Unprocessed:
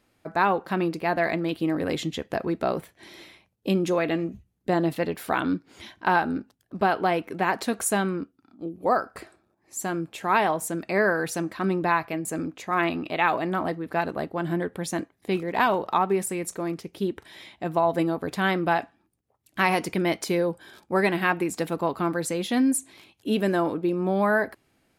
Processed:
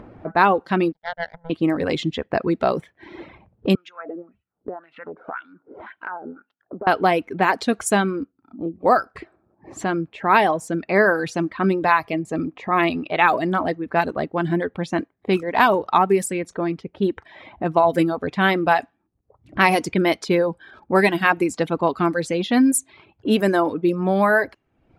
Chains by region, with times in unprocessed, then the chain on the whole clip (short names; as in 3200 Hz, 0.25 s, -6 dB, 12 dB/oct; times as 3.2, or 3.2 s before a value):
0.92–1.5 power-law curve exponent 3 + fixed phaser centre 1700 Hz, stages 8
3.75–6.87 compressor 12:1, threshold -30 dBFS + wah 1.9 Hz 430–2900 Hz, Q 2.2 + bell 1400 Hz +10 dB 0.28 oct
12–12.97 notch 1500 Hz, Q 5.3 + upward compressor, threshold -33 dBFS
whole clip: reverb removal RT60 0.76 s; low-pass opened by the level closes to 900 Hz, open at -20.5 dBFS; upward compressor, threshold -33 dBFS; gain +6.5 dB